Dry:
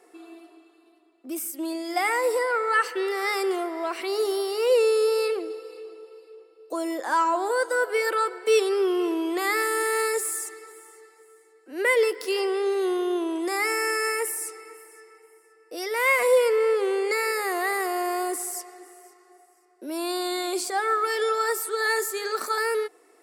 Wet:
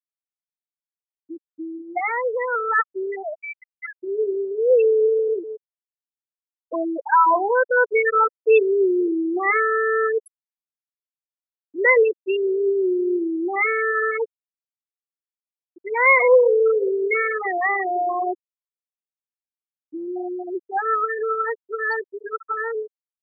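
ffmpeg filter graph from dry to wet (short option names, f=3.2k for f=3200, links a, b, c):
-filter_complex "[0:a]asettb=1/sr,asplit=3[a][b][c];[a]atrim=end=3.234[d];[b]atrim=start=3.23:end=4.01,asetpts=PTS-STARTPTS,afade=t=in:d=0.004:c=qsin,afade=t=out:st=0.776:d=0.004:c=qsin,highpass=f=960:p=1,lowpass=f=2.3k:t=q:w=0.5098,lowpass=f=2.3k:t=q:w=0.6013,lowpass=f=2.3k:t=q:w=0.9,lowpass=f=2.3k:t=q:w=2.563,afreqshift=-2700[e];[c]atrim=start=4.006[f];[d][e]acrossfade=d=0.004:c1=hsin:c2=qsin[g];[g][f]acrossfade=d=0.004:c1=qsin:c2=hsin,asettb=1/sr,asplit=3[h][i][j];[h]atrim=end=15.784[k];[i]atrim=start=15.78:end=19.94,asetpts=PTS-STARTPTS,afade=t=in:d=0.004:c=qsin,afade=t=out:st=4.156:d=0.004:c=qsin,highpass=350,aecho=1:1:136|272|408:0.211|0.0486|0.0112,atrim=end_sample=183456[l];[j]atrim=start=19.936[m];[k][l]acrossfade=d=0.004:c1=hsin:c2=qsin[n];[n][m]acrossfade=d=0.004:c1=qsin:c2=hsin,afftfilt=real='re*gte(hypot(re,im),0.224)':imag='im*gte(hypot(re,im),0.224)':win_size=1024:overlap=0.75,equalizer=f=1.3k:w=0.3:g=6,dynaudnorm=f=380:g=21:m=11.5dB,volume=-4.5dB"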